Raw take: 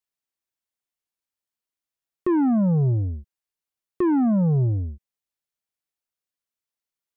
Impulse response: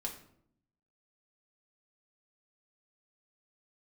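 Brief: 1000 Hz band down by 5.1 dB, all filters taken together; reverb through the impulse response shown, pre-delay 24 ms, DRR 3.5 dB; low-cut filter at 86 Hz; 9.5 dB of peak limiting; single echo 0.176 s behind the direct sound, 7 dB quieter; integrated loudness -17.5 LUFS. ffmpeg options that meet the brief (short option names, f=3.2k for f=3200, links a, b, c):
-filter_complex "[0:a]highpass=86,equalizer=f=1k:t=o:g=-6.5,alimiter=level_in=0.5dB:limit=-24dB:level=0:latency=1,volume=-0.5dB,aecho=1:1:176:0.447,asplit=2[a][b];[1:a]atrim=start_sample=2205,adelay=24[c];[b][c]afir=irnorm=-1:irlink=0,volume=-3.5dB[d];[a][d]amix=inputs=2:normalize=0,volume=11dB"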